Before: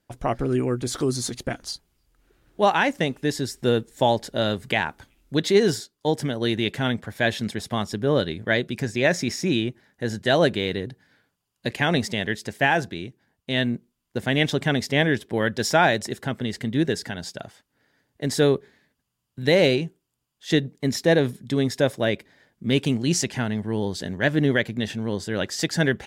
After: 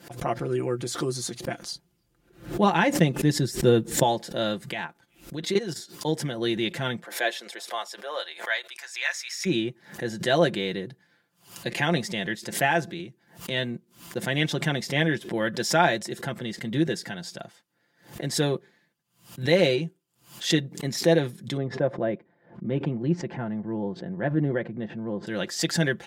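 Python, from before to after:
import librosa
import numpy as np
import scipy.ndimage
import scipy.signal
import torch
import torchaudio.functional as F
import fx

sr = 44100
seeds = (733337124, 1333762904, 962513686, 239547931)

y = fx.low_shelf(x, sr, hz=380.0, db=10.5, at=(1.72, 4.03))
y = fx.level_steps(y, sr, step_db=14, at=(4.69, 5.76))
y = fx.highpass(y, sr, hz=fx.line((7.03, 340.0), (9.45, 1300.0)), slope=24, at=(7.03, 9.45), fade=0.02)
y = fx.band_squash(y, sr, depth_pct=100, at=(12.99, 13.5))
y = fx.lowpass(y, sr, hz=1100.0, slope=12, at=(21.57, 25.27))
y = scipy.signal.sosfilt(scipy.signal.butter(2, 110.0, 'highpass', fs=sr, output='sos'), y)
y = y + 0.62 * np.pad(y, (int(5.8 * sr / 1000.0), 0))[:len(y)]
y = fx.pre_swell(y, sr, db_per_s=140.0)
y = y * 10.0 ** (-4.5 / 20.0)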